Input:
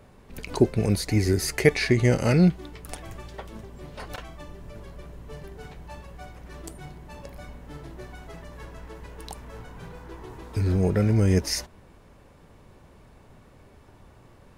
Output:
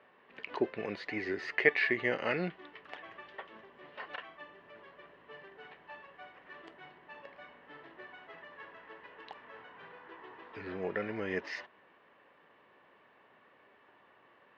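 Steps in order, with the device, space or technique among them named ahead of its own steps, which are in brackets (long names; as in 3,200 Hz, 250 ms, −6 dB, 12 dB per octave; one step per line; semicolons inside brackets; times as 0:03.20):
phone earpiece (loudspeaker in its box 390–3,400 Hz, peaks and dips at 1,100 Hz +5 dB, 1,800 Hz +10 dB, 2,900 Hz +6 dB)
level −7.5 dB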